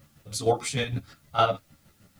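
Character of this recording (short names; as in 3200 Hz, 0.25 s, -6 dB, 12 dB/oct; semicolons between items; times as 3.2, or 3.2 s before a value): chopped level 6.5 Hz, depth 60%, duty 40%; a quantiser's noise floor 12-bit, dither triangular; a shimmering, thickened sound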